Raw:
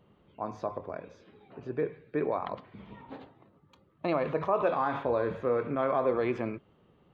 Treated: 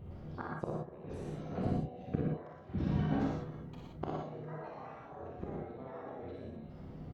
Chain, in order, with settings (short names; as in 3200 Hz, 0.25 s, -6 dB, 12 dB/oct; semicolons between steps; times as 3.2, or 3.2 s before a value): trilling pitch shifter +8.5 st, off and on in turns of 0.103 s; tone controls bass +9 dB, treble -7 dB; harmoniser -5 st -2 dB; flipped gate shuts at -24 dBFS, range -28 dB; bell 1900 Hz -7 dB 2.4 oct; doubler 32 ms -10 dB; early reflections 45 ms -5.5 dB, 59 ms -4 dB; non-linear reverb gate 0.14 s rising, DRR -0.5 dB; gain +5 dB